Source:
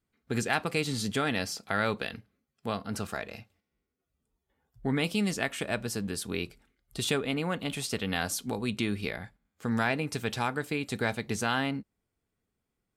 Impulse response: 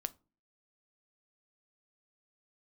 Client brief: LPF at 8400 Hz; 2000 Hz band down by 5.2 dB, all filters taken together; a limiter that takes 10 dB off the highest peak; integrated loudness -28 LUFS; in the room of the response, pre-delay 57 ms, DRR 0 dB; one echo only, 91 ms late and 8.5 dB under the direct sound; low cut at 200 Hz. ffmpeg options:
-filter_complex "[0:a]highpass=200,lowpass=8.4k,equalizer=f=2k:t=o:g=-7,alimiter=limit=-23dB:level=0:latency=1,aecho=1:1:91:0.376,asplit=2[a][b];[1:a]atrim=start_sample=2205,adelay=57[c];[b][c]afir=irnorm=-1:irlink=0,volume=1dB[d];[a][d]amix=inputs=2:normalize=0,volume=4.5dB"

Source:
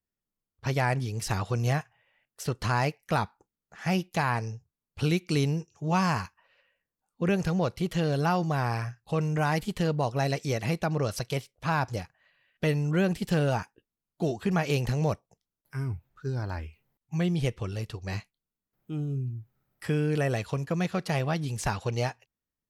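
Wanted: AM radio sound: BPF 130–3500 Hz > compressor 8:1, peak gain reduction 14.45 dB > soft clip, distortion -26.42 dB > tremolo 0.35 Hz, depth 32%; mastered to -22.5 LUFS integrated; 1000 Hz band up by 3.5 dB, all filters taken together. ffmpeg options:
-af "highpass=130,lowpass=3.5k,equalizer=f=1k:t=o:g=4.5,acompressor=threshold=-33dB:ratio=8,asoftclip=threshold=-21.5dB,tremolo=f=0.35:d=0.32,volume=18.5dB"

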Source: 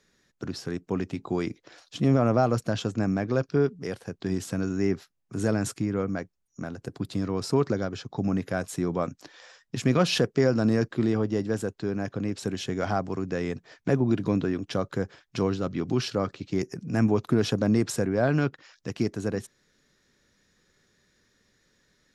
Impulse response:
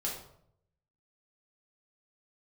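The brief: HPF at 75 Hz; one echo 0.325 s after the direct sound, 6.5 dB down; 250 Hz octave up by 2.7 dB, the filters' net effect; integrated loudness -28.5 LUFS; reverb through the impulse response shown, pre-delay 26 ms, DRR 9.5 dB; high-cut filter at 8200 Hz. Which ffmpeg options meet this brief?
-filter_complex "[0:a]highpass=75,lowpass=8.2k,equalizer=f=250:t=o:g=3.5,aecho=1:1:325:0.473,asplit=2[a][b];[1:a]atrim=start_sample=2205,adelay=26[c];[b][c]afir=irnorm=-1:irlink=0,volume=-12.5dB[d];[a][d]amix=inputs=2:normalize=0,volume=-4dB"

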